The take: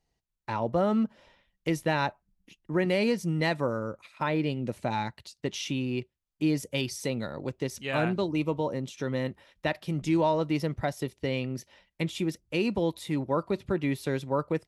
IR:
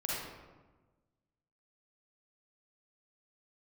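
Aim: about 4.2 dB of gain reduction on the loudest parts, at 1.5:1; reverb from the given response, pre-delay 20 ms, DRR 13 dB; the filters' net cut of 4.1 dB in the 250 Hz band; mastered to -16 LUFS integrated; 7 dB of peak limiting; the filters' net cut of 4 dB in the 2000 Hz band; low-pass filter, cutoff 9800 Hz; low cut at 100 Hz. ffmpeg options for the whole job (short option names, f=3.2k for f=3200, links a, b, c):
-filter_complex "[0:a]highpass=100,lowpass=9.8k,equalizer=f=250:t=o:g=-5.5,equalizer=f=2k:t=o:g=-5,acompressor=threshold=-35dB:ratio=1.5,alimiter=level_in=2dB:limit=-24dB:level=0:latency=1,volume=-2dB,asplit=2[a][b];[1:a]atrim=start_sample=2205,adelay=20[c];[b][c]afir=irnorm=-1:irlink=0,volume=-18dB[d];[a][d]amix=inputs=2:normalize=0,volume=22dB"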